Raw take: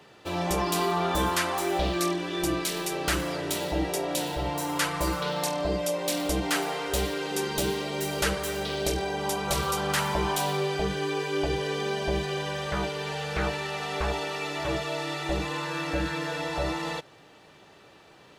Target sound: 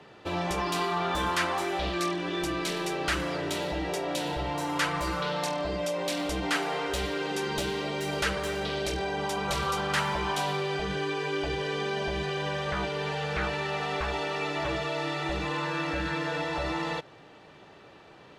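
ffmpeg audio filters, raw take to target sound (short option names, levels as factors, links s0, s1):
-filter_complex "[0:a]aemphasis=mode=reproduction:type=50fm,acrossover=split=1100[s0][s1];[s0]alimiter=level_in=1.5:limit=0.0631:level=0:latency=1,volume=0.668[s2];[s2][s1]amix=inputs=2:normalize=0,volume=1.26"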